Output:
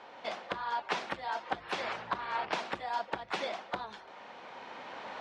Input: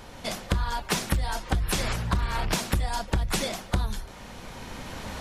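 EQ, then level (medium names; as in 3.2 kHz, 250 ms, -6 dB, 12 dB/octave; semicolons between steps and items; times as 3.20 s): band-pass 440–3400 Hz; distance through air 58 m; peaking EQ 830 Hz +3.5 dB 0.77 oct; -3.5 dB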